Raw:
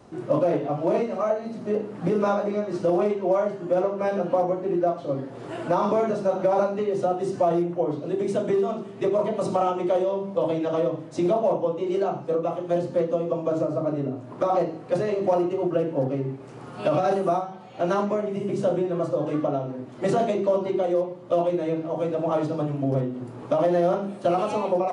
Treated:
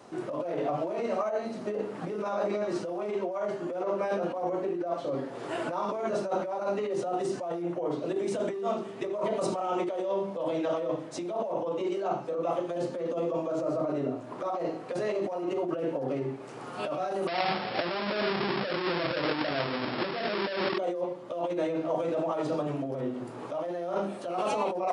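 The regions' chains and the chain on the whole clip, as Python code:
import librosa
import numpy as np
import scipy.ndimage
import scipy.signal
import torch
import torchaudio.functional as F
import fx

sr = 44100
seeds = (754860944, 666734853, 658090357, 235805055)

y = fx.chain(x, sr, fx.halfwave_hold(),
    fx.brickwall_lowpass(high_hz=5500.0),
    fx.over_compress(threshold_db=-29.0, ratio=-1.0), at=(17.27, 20.78))
y = fx.over_compress(y, sr, threshold_db=-27.0, ratio=-1.0)
y = fx.highpass(y, sr, hz=440.0, slope=6)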